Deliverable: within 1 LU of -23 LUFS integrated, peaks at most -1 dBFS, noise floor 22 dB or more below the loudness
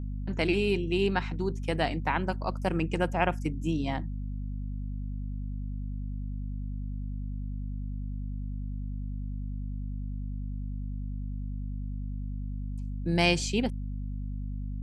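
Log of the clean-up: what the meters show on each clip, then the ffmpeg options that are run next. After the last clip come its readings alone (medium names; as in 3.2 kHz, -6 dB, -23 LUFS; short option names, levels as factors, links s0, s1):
hum 50 Hz; highest harmonic 250 Hz; hum level -32 dBFS; loudness -32.5 LUFS; peak level -10.0 dBFS; loudness target -23.0 LUFS
-> -af "bandreject=f=50:t=h:w=6,bandreject=f=100:t=h:w=6,bandreject=f=150:t=h:w=6,bandreject=f=200:t=h:w=6,bandreject=f=250:t=h:w=6"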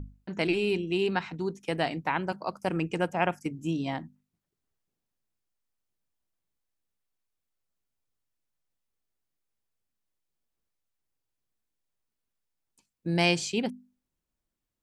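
hum not found; loudness -30.0 LUFS; peak level -11.0 dBFS; loudness target -23.0 LUFS
-> -af "volume=2.24"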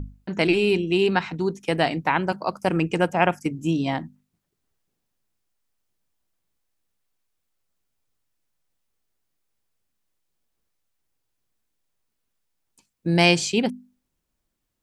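loudness -23.0 LUFS; peak level -4.0 dBFS; noise floor -78 dBFS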